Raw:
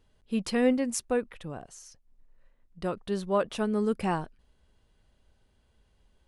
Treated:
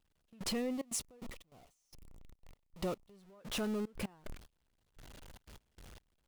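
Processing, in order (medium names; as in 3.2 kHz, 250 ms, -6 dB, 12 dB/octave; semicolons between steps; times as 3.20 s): jump at every zero crossing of -30 dBFS; 0.51–3.18 s: peaking EQ 1.6 kHz -13 dB 0.24 oct; gate with hold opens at -25 dBFS; transient shaper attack -7 dB, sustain -2 dB; compression 12:1, threshold -37 dBFS, peak gain reduction 18 dB; trance gate "....xxxx.x..xx." 148 bpm -24 dB; trim +3.5 dB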